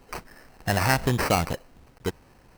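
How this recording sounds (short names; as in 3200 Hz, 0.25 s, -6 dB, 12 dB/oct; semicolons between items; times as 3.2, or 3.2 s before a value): aliases and images of a low sample rate 3500 Hz, jitter 0%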